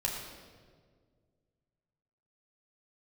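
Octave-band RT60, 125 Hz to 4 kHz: 2.6 s, 2.3 s, 2.1 s, 1.5 s, 1.3 s, 1.2 s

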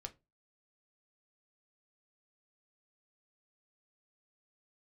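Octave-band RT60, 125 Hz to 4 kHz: 0.35 s, 0.30 s, 0.25 s, 0.20 s, 0.20 s, 0.15 s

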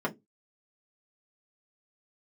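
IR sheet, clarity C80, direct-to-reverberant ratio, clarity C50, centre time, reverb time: 30.0 dB, -4.0 dB, 21.5 dB, 8 ms, 0.20 s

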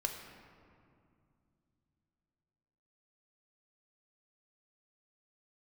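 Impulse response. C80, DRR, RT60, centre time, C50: 6.5 dB, 3.0 dB, 2.4 s, 48 ms, 5.5 dB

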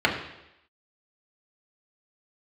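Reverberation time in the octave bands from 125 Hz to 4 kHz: 0.75 s, 0.85 s, 0.85 s, 0.85 s, 0.90 s, 0.90 s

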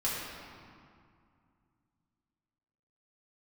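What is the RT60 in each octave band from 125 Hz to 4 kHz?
3.3 s, 3.0 s, 2.1 s, 2.4 s, 1.9 s, 1.5 s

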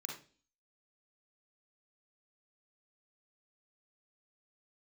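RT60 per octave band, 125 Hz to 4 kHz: 0.45 s, 0.55 s, 0.45 s, 0.35 s, 0.40 s, 0.45 s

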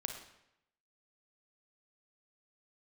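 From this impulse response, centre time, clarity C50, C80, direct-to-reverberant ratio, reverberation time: 26 ms, 5.5 dB, 8.5 dB, 4.0 dB, 0.80 s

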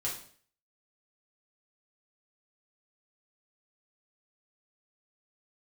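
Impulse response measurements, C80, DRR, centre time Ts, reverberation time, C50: 11.0 dB, -5.5 dB, 30 ms, 0.50 s, 5.5 dB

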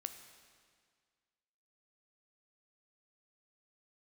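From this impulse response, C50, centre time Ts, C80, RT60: 9.0 dB, 22 ms, 10.0 dB, 1.9 s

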